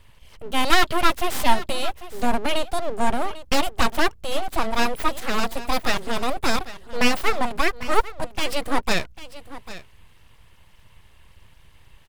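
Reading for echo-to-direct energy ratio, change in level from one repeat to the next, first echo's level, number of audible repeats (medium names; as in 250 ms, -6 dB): -15.5 dB, no regular repeats, -15.5 dB, 1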